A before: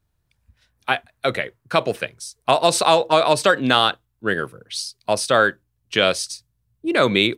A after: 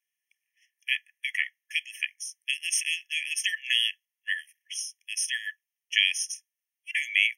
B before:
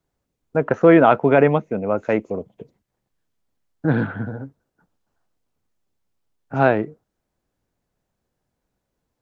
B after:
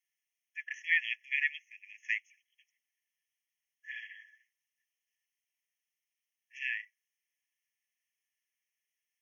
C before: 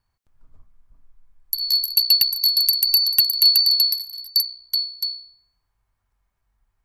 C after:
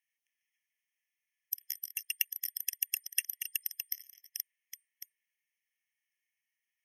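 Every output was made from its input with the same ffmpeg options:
-af "asuperstop=centerf=4300:order=4:qfactor=2.6,afftfilt=real='re*eq(mod(floor(b*sr/1024/1700),2),1)':imag='im*eq(mod(floor(b*sr/1024/1700),2),1)':win_size=1024:overlap=0.75"

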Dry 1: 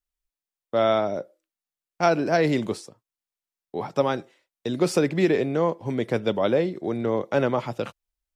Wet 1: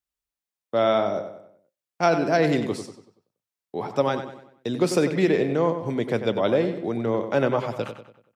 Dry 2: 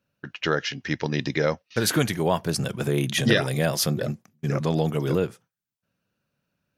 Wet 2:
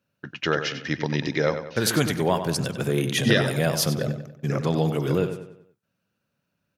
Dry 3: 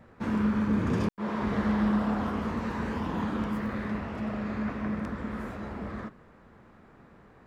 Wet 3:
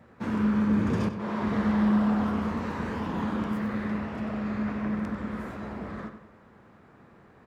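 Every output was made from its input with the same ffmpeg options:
-filter_complex "[0:a]highpass=66,asplit=2[a][b];[b]adelay=95,lowpass=f=4.8k:p=1,volume=-9dB,asplit=2[c][d];[d]adelay=95,lowpass=f=4.8k:p=1,volume=0.44,asplit=2[e][f];[f]adelay=95,lowpass=f=4.8k:p=1,volume=0.44,asplit=2[g][h];[h]adelay=95,lowpass=f=4.8k:p=1,volume=0.44,asplit=2[i][j];[j]adelay=95,lowpass=f=4.8k:p=1,volume=0.44[k];[c][e][g][i][k]amix=inputs=5:normalize=0[l];[a][l]amix=inputs=2:normalize=0"

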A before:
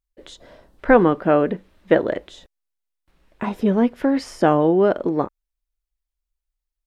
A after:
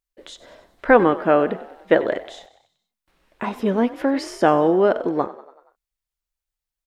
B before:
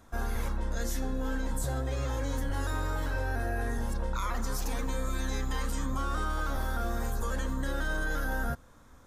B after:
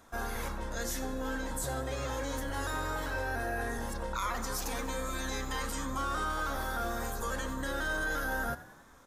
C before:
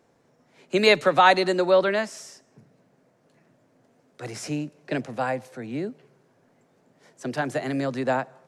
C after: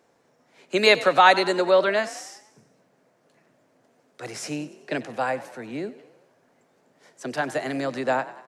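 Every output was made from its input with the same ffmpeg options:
-filter_complex "[0:a]lowshelf=f=230:g=-10.5,asplit=6[a][b][c][d][e][f];[b]adelay=95,afreqshift=41,volume=-17dB[g];[c]adelay=190,afreqshift=82,volume=-22.2dB[h];[d]adelay=285,afreqshift=123,volume=-27.4dB[i];[e]adelay=380,afreqshift=164,volume=-32.6dB[j];[f]adelay=475,afreqshift=205,volume=-37.8dB[k];[a][g][h][i][j][k]amix=inputs=6:normalize=0,volume=2dB"

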